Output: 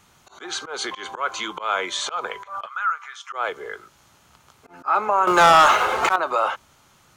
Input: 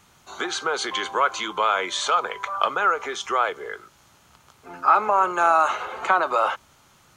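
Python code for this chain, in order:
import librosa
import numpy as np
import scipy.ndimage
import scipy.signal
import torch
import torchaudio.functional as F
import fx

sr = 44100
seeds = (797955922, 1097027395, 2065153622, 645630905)

y = fx.auto_swell(x, sr, attack_ms=145.0)
y = fx.ladder_highpass(y, sr, hz=1100.0, resonance_pct=50, at=(2.65, 3.32), fade=0.02)
y = fx.leveller(y, sr, passes=3, at=(5.27, 6.16))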